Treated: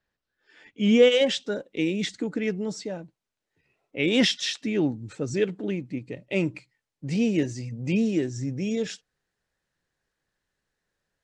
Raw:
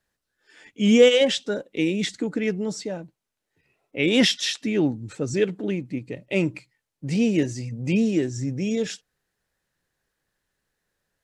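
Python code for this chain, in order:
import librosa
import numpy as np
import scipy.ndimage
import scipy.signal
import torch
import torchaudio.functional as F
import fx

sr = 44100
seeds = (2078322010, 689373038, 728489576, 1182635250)

y = fx.lowpass(x, sr, hz=fx.steps((0.0, 4600.0), (1.12, 8100.0)), slope=12)
y = y * 10.0 ** (-2.5 / 20.0)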